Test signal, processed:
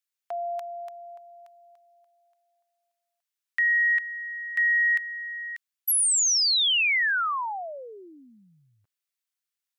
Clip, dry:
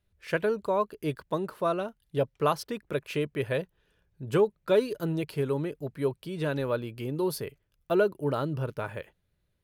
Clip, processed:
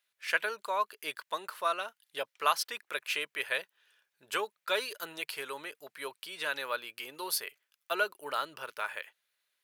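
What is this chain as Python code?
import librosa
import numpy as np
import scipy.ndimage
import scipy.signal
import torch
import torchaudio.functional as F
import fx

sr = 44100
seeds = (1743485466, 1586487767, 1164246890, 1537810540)

y = scipy.signal.sosfilt(scipy.signal.butter(2, 1400.0, 'highpass', fs=sr, output='sos'), x)
y = y * 10.0 ** (6.5 / 20.0)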